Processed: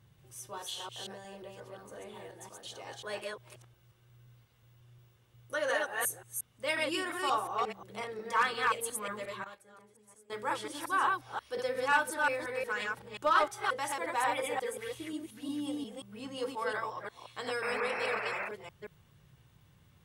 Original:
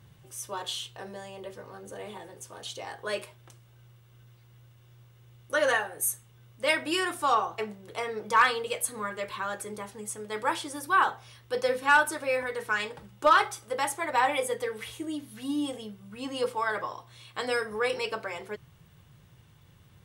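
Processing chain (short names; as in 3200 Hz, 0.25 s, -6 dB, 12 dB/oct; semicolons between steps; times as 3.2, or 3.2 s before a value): reverse delay 0.178 s, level -1 dB; 5.54–6.03 HPF 180 Hz 6 dB/oct; 9.44–10.3 gate -29 dBFS, range -17 dB; 17.62–18.49 painted sound noise 540–2700 Hz -30 dBFS; gain -7.5 dB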